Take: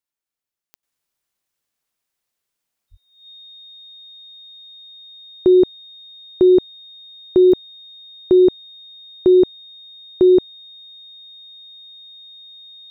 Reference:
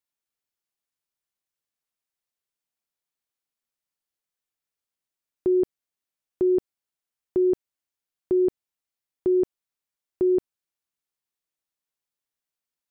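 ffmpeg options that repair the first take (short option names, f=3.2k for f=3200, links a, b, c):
-filter_complex "[0:a]adeclick=t=4,bandreject=f=3.7k:w=30,asplit=3[a][b][c];[a]afade=t=out:st=2.9:d=0.02[d];[b]highpass=f=140:w=0.5412,highpass=f=140:w=1.3066,afade=t=in:st=2.9:d=0.02,afade=t=out:st=3.02:d=0.02[e];[c]afade=t=in:st=3.02:d=0.02[f];[d][e][f]amix=inputs=3:normalize=0,asetnsamples=n=441:p=0,asendcmd='0.83 volume volume -9.5dB',volume=0dB"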